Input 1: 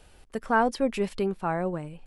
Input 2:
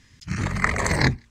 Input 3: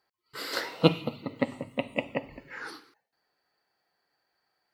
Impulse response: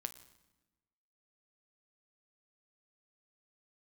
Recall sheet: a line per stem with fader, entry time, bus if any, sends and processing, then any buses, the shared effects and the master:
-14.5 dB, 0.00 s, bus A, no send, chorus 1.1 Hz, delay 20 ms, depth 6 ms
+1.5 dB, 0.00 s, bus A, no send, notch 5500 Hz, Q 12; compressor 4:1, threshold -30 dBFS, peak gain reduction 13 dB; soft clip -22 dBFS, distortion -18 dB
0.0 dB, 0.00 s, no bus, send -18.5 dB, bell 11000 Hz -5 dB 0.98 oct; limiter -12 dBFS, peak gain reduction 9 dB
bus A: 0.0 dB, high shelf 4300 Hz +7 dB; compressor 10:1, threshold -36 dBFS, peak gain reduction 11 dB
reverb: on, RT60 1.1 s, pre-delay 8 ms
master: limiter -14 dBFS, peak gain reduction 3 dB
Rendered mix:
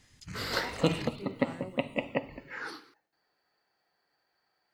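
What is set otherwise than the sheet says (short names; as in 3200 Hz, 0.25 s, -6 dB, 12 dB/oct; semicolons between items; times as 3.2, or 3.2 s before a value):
stem 2 +1.5 dB -> -9.0 dB; master: missing limiter -14 dBFS, peak gain reduction 3 dB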